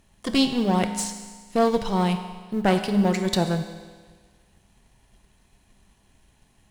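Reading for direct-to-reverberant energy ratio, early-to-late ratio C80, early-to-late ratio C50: 6.5 dB, 9.5 dB, 8.5 dB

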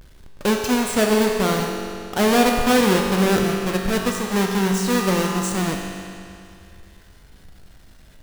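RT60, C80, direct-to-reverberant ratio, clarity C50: 2.5 s, 3.5 dB, 1.0 dB, 2.5 dB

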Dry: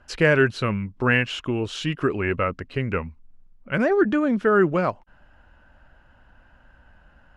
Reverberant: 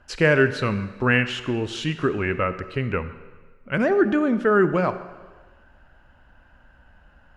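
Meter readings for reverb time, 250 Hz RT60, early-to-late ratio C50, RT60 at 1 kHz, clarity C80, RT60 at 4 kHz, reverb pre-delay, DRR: 1.3 s, 1.3 s, 12.5 dB, 1.3 s, 13.5 dB, 1.3 s, 32 ms, 11.5 dB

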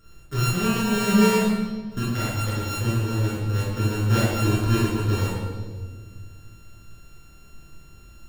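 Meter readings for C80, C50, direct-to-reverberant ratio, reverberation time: 1.5 dB, -2.5 dB, -8.5 dB, 1.6 s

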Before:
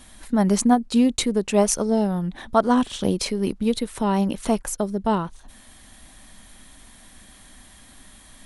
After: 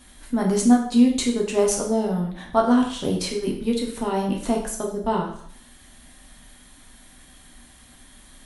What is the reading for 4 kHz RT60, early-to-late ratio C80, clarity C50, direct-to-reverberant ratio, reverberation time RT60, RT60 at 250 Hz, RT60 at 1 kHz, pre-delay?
0.55 s, 10.0 dB, 6.5 dB, -0.5 dB, 0.60 s, 0.65 s, 0.60 s, 4 ms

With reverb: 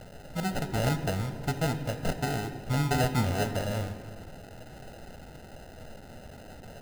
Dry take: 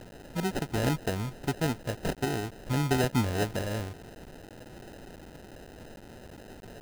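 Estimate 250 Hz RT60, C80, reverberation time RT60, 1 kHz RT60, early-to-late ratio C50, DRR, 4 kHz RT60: 2.3 s, 11.5 dB, 1.8 s, 1.7 s, 10.5 dB, 8.5 dB, 1.1 s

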